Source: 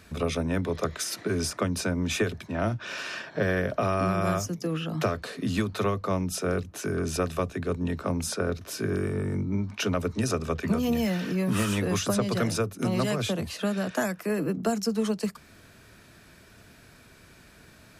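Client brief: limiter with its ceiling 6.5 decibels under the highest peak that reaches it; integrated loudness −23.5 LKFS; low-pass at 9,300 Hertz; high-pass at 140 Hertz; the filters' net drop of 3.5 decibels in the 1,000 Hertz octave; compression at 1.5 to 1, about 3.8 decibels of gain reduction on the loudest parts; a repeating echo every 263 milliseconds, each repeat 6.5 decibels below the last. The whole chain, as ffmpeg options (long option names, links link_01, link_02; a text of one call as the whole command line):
ffmpeg -i in.wav -af "highpass=140,lowpass=9300,equalizer=frequency=1000:width_type=o:gain=-5,acompressor=threshold=-33dB:ratio=1.5,alimiter=level_in=0.5dB:limit=-24dB:level=0:latency=1,volume=-0.5dB,aecho=1:1:263|526|789|1052|1315|1578:0.473|0.222|0.105|0.0491|0.0231|0.0109,volume=10dB" out.wav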